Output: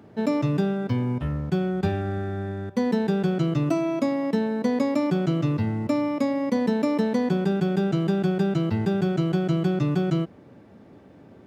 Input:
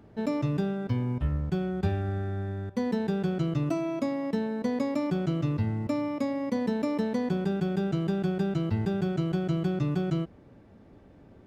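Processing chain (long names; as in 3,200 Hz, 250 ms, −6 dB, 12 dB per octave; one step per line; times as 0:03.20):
high-pass filter 120 Hz 12 dB per octave
level +5.5 dB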